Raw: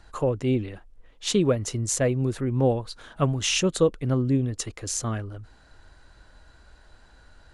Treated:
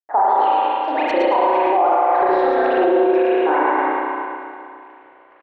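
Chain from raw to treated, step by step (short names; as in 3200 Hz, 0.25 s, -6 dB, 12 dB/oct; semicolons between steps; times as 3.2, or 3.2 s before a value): speed glide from 157% -> 121%; elliptic high-pass 280 Hz, stop band 40 dB; low-pass opened by the level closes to 780 Hz, open at -20 dBFS; dynamic EQ 550 Hz, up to -5 dB, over -36 dBFS, Q 2.2; reverse; compressor 6:1, threshold -32 dBFS, peak gain reduction 13.5 dB; reverse; sample gate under -57.5 dBFS; LFO band-pass saw up 1.8 Hz 510–3900 Hz; tape spacing loss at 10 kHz 39 dB; on a send: feedback echo 0.112 s, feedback 42%, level -3.5 dB; on the sum: spring tank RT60 2.5 s, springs 32/36 ms, chirp 35 ms, DRR -7.5 dB; maximiser +34 dB; gain -7 dB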